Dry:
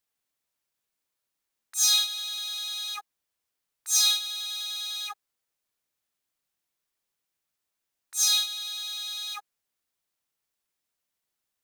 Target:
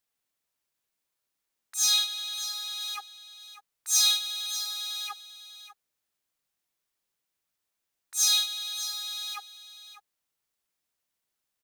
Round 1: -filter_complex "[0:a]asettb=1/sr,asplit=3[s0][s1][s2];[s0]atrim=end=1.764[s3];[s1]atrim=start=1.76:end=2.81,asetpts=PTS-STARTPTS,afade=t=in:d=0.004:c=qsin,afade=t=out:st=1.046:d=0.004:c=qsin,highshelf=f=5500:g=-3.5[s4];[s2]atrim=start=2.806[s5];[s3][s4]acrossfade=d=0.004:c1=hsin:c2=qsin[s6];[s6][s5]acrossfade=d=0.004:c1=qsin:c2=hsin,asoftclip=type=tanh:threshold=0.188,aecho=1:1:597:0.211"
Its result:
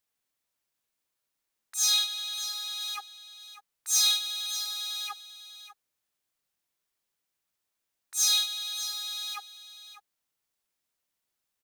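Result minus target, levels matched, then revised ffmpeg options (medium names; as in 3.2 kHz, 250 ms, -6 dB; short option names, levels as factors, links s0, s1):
saturation: distortion +14 dB
-filter_complex "[0:a]asettb=1/sr,asplit=3[s0][s1][s2];[s0]atrim=end=1.764[s3];[s1]atrim=start=1.76:end=2.81,asetpts=PTS-STARTPTS,afade=t=in:d=0.004:c=qsin,afade=t=out:st=1.046:d=0.004:c=qsin,highshelf=f=5500:g=-3.5[s4];[s2]atrim=start=2.806[s5];[s3][s4]acrossfade=d=0.004:c1=hsin:c2=qsin[s6];[s6][s5]acrossfade=d=0.004:c1=qsin:c2=hsin,asoftclip=type=tanh:threshold=0.473,aecho=1:1:597:0.211"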